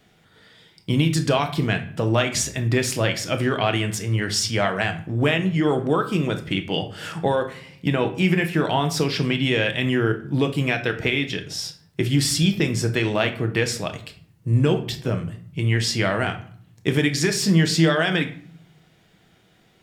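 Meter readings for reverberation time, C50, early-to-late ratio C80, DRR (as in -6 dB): 0.55 s, 12.5 dB, 16.5 dB, 5.5 dB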